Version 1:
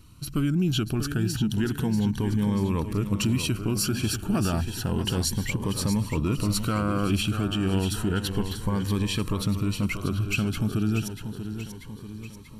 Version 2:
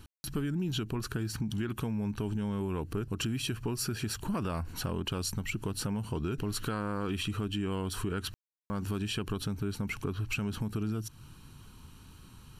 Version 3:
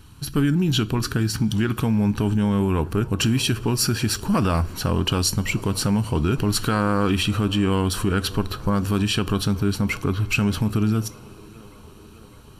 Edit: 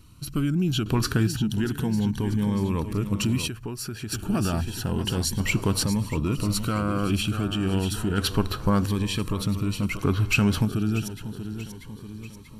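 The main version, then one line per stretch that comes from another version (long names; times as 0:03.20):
1
0:00.86–0:01.27: punch in from 3
0:03.48–0:04.12: punch in from 2
0:05.40–0:05.83: punch in from 3
0:08.18–0:08.86: punch in from 3
0:09.99–0:10.65: punch in from 3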